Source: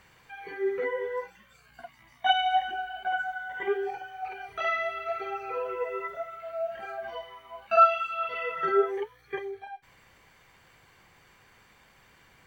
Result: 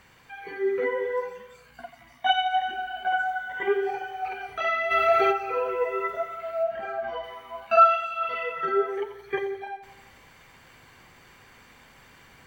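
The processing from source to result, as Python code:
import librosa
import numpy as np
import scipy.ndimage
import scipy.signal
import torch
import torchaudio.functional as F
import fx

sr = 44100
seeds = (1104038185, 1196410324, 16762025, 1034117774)

y = fx.high_shelf(x, sr, hz=3700.0, db=-11.5, at=(6.63, 7.24))
y = fx.rider(y, sr, range_db=4, speed_s=0.5)
y = fx.peak_eq(y, sr, hz=250.0, db=6.0, octaves=0.22)
y = fx.echo_feedback(y, sr, ms=87, feedback_pct=57, wet_db=-12.5)
y = fx.env_flatten(y, sr, amount_pct=50, at=(4.9, 5.31), fade=0.02)
y = y * librosa.db_to_amplitude(1.5)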